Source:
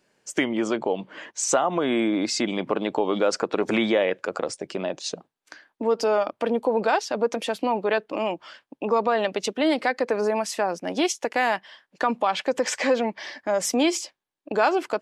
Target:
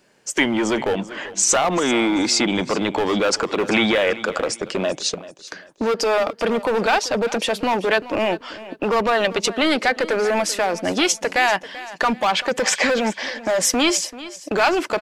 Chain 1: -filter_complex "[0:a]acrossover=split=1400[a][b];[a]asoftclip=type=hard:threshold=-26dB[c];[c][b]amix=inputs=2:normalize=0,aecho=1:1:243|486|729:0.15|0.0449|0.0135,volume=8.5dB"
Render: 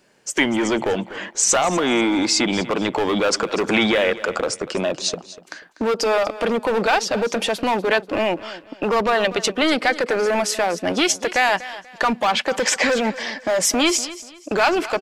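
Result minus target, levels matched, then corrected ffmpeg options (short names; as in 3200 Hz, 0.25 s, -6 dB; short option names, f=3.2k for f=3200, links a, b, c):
echo 0.145 s early
-filter_complex "[0:a]acrossover=split=1400[a][b];[a]asoftclip=type=hard:threshold=-26dB[c];[c][b]amix=inputs=2:normalize=0,aecho=1:1:388|776|1164:0.15|0.0449|0.0135,volume=8.5dB"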